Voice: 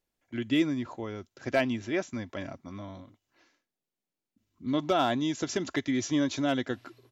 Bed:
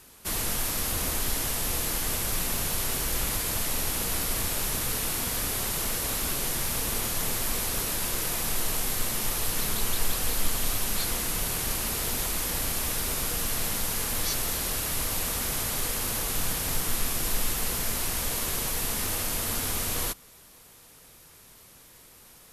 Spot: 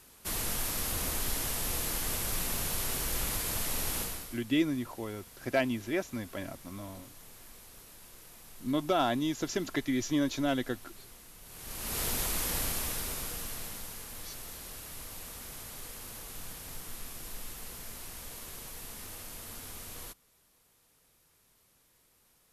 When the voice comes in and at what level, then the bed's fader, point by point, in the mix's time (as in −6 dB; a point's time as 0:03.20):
4.00 s, −2.0 dB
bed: 0:04.00 −4.5 dB
0:04.44 −23.5 dB
0:11.41 −23.5 dB
0:11.99 −3 dB
0:12.59 −3 dB
0:14.04 −15 dB